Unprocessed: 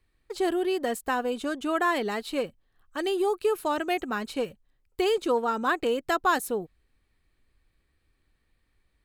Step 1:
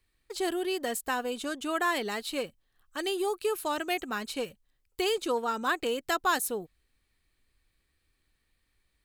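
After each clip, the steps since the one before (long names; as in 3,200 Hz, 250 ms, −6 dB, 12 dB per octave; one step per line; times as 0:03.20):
high-shelf EQ 2,300 Hz +9.5 dB
level −5 dB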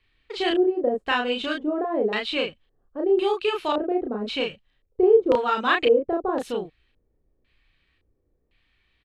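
auto-filter low-pass square 0.94 Hz 500–3,000 Hz
double-tracking delay 33 ms −2 dB
level +4 dB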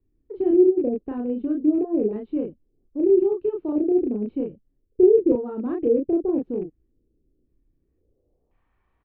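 loose part that buzzes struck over −35 dBFS, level −16 dBFS
low-pass filter sweep 320 Hz → 1,000 Hz, 0:07.77–0:08.60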